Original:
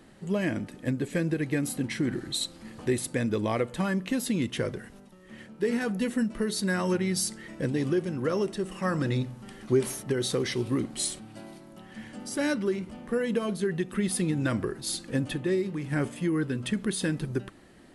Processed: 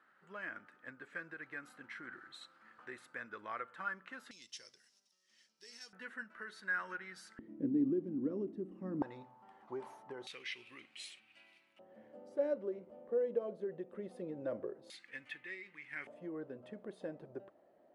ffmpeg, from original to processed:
ffmpeg -i in.wav -af "asetnsamples=nb_out_samples=441:pad=0,asendcmd='4.31 bandpass f 5400;5.93 bandpass f 1500;7.39 bandpass f 280;9.02 bandpass f 880;10.27 bandpass f 2500;11.79 bandpass f 550;14.9 bandpass f 2100;16.07 bandpass f 620',bandpass=frequency=1400:width_type=q:width=5.1:csg=0" out.wav

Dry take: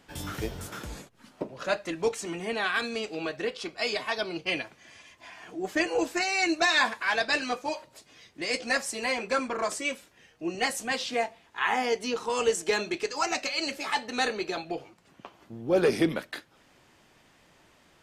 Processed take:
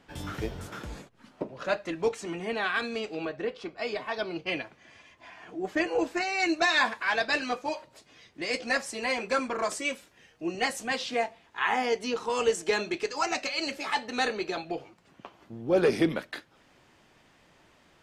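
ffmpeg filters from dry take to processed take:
ffmpeg -i in.wav -af "asetnsamples=nb_out_samples=441:pad=0,asendcmd='3.25 lowpass f 1400;4.14 lowpass f 2600;6.4 lowpass f 4900;9.1 lowpass f 12000;10.51 lowpass f 6100',lowpass=frequency=3600:poles=1" out.wav

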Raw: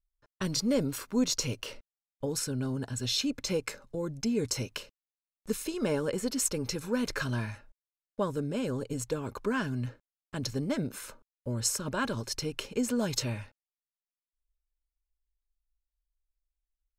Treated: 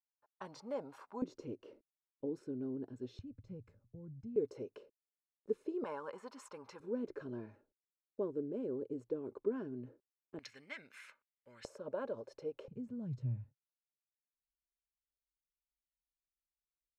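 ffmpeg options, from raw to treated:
ffmpeg -i in.wav -af "asetnsamples=nb_out_samples=441:pad=0,asendcmd='1.22 bandpass f 340;3.19 bandpass f 100;4.36 bandpass f 410;5.84 bandpass f 1000;6.8 bandpass f 370;10.39 bandpass f 2100;11.65 bandpass f 530;12.68 bandpass f 130',bandpass=frequency=830:width_type=q:width=3.5:csg=0" out.wav

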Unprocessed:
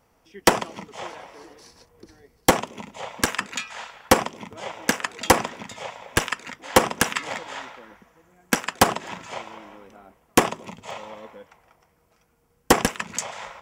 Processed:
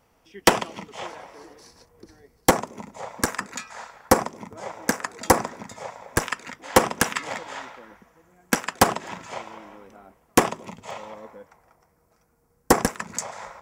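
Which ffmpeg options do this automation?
ffmpeg -i in.wav -af "asetnsamples=nb_out_samples=441:pad=0,asendcmd='1.06 equalizer g -4.5;2.51 equalizer g -13.5;6.23 equalizer g -4;11.14 equalizer g -12',equalizer=frequency=3000:width_type=o:width=0.76:gain=2" out.wav

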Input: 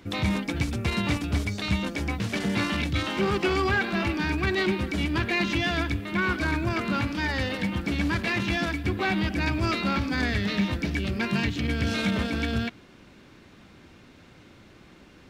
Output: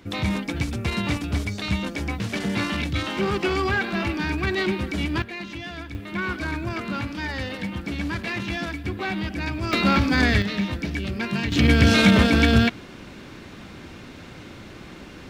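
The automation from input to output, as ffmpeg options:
ffmpeg -i in.wav -af "asetnsamples=nb_out_samples=441:pad=0,asendcmd='5.22 volume volume -9dB;5.95 volume volume -2dB;9.73 volume volume 7dB;10.42 volume volume 0dB;11.52 volume volume 10.5dB',volume=1dB" out.wav

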